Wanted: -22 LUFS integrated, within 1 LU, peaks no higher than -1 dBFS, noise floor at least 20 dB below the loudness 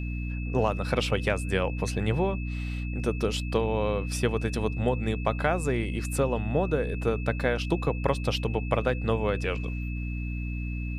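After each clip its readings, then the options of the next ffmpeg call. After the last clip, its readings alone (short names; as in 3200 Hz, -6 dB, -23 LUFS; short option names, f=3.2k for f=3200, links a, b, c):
hum 60 Hz; harmonics up to 300 Hz; hum level -29 dBFS; steady tone 2600 Hz; tone level -42 dBFS; loudness -28.5 LUFS; peak -10.0 dBFS; loudness target -22.0 LUFS
-> -af "bandreject=f=60:t=h:w=6,bandreject=f=120:t=h:w=6,bandreject=f=180:t=h:w=6,bandreject=f=240:t=h:w=6,bandreject=f=300:t=h:w=6"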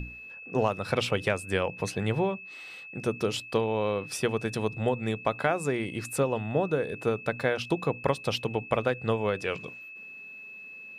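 hum none; steady tone 2600 Hz; tone level -42 dBFS
-> -af "bandreject=f=2.6k:w=30"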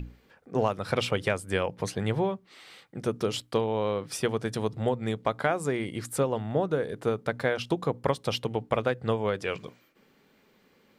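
steady tone none; loudness -29.5 LUFS; peak -11.0 dBFS; loudness target -22.0 LUFS
-> -af "volume=7.5dB"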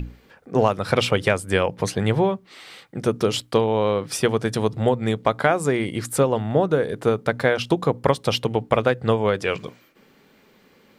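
loudness -22.0 LUFS; peak -3.5 dBFS; noise floor -56 dBFS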